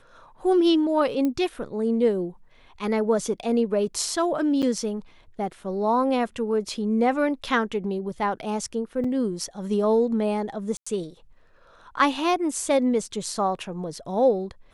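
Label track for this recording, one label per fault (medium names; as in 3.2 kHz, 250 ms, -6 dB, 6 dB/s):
1.250000	1.250000	pop -15 dBFS
4.620000	4.630000	dropout 7.4 ms
9.040000	9.040000	dropout 4.3 ms
10.770000	10.870000	dropout 95 ms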